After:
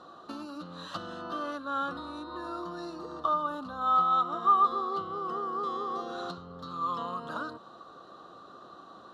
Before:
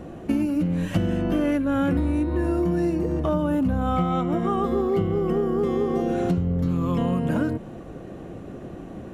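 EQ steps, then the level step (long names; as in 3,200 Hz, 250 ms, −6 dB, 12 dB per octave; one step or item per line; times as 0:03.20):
pair of resonant band-passes 2,200 Hz, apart 1.7 octaves
+9.0 dB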